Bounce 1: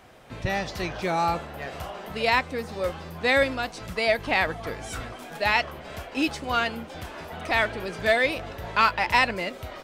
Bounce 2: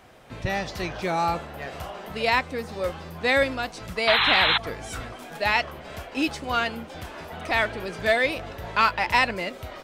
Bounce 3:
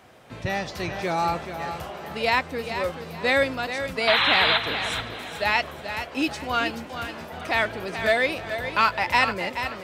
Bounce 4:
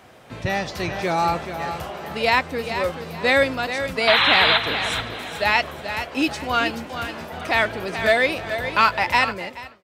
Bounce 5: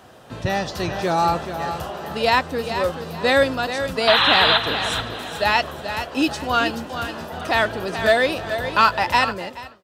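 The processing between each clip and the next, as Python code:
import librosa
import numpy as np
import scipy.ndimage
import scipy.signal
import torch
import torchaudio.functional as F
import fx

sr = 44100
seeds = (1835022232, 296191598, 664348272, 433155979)

y1 = fx.spec_paint(x, sr, seeds[0], shape='noise', start_s=4.07, length_s=0.51, low_hz=760.0, high_hz=4200.0, level_db=-21.0)
y2 = scipy.signal.sosfilt(scipy.signal.butter(2, 72.0, 'highpass', fs=sr, output='sos'), y1)
y2 = fx.echo_feedback(y2, sr, ms=431, feedback_pct=30, wet_db=-9.0)
y3 = fx.fade_out_tail(y2, sr, length_s=0.79)
y3 = y3 * 10.0 ** (3.5 / 20.0)
y4 = fx.peak_eq(y3, sr, hz=2200.0, db=-11.5, octaves=0.26)
y4 = y4 * 10.0 ** (2.0 / 20.0)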